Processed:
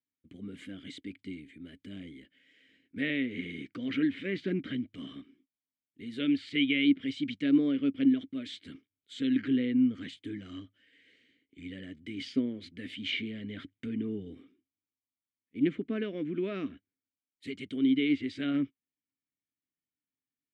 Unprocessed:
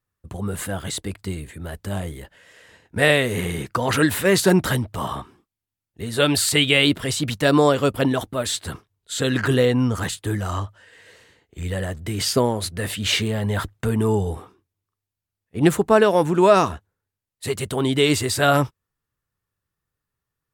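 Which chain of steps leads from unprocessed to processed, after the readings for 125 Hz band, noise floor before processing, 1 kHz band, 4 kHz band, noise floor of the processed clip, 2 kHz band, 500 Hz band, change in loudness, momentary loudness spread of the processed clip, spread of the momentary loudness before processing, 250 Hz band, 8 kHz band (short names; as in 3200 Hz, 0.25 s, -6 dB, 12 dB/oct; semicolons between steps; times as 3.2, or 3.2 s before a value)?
-20.5 dB, under -85 dBFS, under -30 dB, -15.0 dB, under -85 dBFS, -14.0 dB, -19.5 dB, -10.5 dB, 19 LU, 16 LU, -5.5 dB, under -30 dB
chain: treble ducked by the level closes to 2700 Hz, closed at -15.5 dBFS; vowel filter i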